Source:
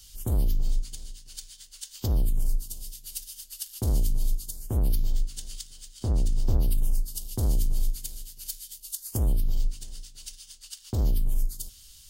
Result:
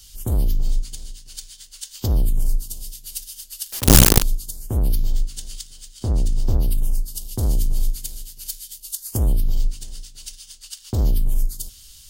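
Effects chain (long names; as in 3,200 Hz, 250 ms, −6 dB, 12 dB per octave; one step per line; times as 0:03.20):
in parallel at −1 dB: speech leveller within 4 dB 2 s
0:03.72–0:04.23: on the sum: log-companded quantiser 2 bits
level −1 dB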